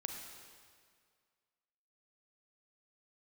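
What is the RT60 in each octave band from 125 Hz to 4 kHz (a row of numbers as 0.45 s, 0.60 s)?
1.9 s, 1.9 s, 2.0 s, 2.0 s, 1.8 s, 1.7 s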